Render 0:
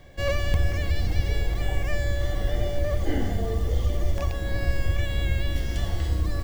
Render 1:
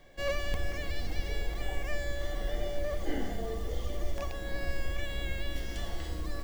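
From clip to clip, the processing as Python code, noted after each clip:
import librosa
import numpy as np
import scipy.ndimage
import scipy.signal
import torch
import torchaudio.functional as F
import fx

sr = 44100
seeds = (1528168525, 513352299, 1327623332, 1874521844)

y = fx.peak_eq(x, sr, hz=93.0, db=-13.0, octaves=1.4)
y = F.gain(torch.from_numpy(y), -5.0).numpy()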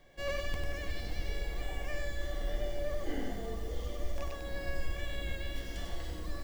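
y = x + 10.0 ** (-5.0 / 20.0) * np.pad(x, (int(97 * sr / 1000.0), 0))[:len(x)]
y = F.gain(torch.from_numpy(y), -4.0).numpy()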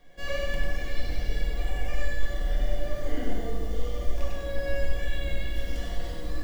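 y = fx.room_shoebox(x, sr, seeds[0], volume_m3=670.0, walls='mixed', distance_m=1.8)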